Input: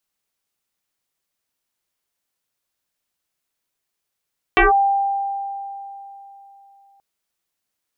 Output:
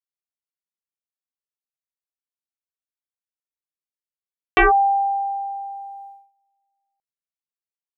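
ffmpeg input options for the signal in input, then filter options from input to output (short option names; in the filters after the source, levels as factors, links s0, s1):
-f lavfi -i "aevalsrc='0.355*pow(10,-3*t/3.37)*sin(2*PI*793*t+5.5*clip(1-t/0.15,0,1)*sin(2*PI*0.48*793*t))':d=2.43:s=44100"
-af "agate=range=0.0562:threshold=0.01:ratio=16:detection=peak"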